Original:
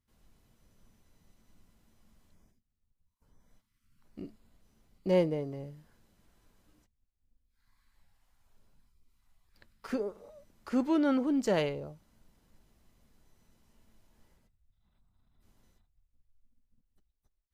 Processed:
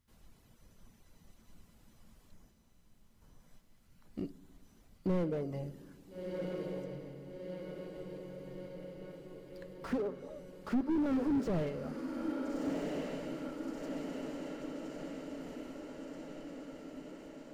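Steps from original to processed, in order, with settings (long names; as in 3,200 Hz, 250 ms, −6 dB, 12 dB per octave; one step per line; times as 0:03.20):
reverb reduction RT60 0.62 s
0:09.99–0:11.06: treble cut that deepens with the level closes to 570 Hz, closed at −26 dBFS
in parallel at +1 dB: downward compressor, threshold −39 dBFS, peak gain reduction 16.5 dB
on the sum: soft clipping −19.5 dBFS, distortion −19 dB
feedback delay with all-pass diffusion 1,379 ms, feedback 67%, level −7 dB
on a send at −16.5 dB: convolution reverb RT60 1.5 s, pre-delay 3 ms
on the sum: slew-rate limiting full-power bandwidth 13 Hz
level −1 dB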